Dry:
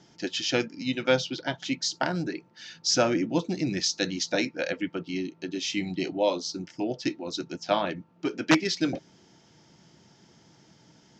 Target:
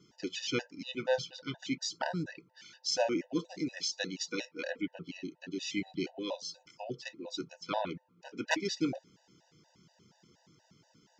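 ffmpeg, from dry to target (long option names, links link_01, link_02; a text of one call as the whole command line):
ffmpeg -i in.wav -filter_complex "[0:a]asettb=1/sr,asplit=3[link_01][link_02][link_03];[link_01]atrim=end=2.854[link_04];[link_02]atrim=start=2.85:end=4.79,asetpts=PTS-STARTPTS,afade=type=in:duration=0.004:curve=qsin,afade=type=out:start_time=1.936:duration=0.004:curve=qsin,highpass=210[link_05];[link_03]atrim=start=4.786[link_06];[link_04][link_05]acrossfade=duration=0.004:curve1=hsin:curve2=qsin[link_07];[link_07][link_06]acrossfade=duration=0.004:curve1=qsin:curve2=hsin,afftfilt=real='re*gt(sin(2*PI*4.2*pts/sr)*(1-2*mod(floor(b*sr/1024/500),2)),0)':imag='im*gt(sin(2*PI*4.2*pts/sr)*(1-2*mod(floor(b*sr/1024/500),2)),0)':win_size=1024:overlap=0.75,volume=-4.5dB" out.wav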